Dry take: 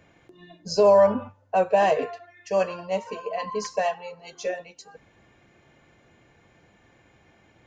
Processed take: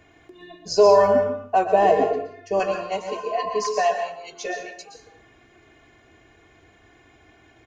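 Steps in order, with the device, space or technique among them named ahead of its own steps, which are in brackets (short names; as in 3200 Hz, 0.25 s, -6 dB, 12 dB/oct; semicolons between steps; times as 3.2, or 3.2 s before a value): 1.66–2.6 tilt shelf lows +7 dB, about 640 Hz; microphone above a desk (comb 2.8 ms, depth 63%; reverb RT60 0.50 s, pre-delay 0.113 s, DRR 5.5 dB); gain +1.5 dB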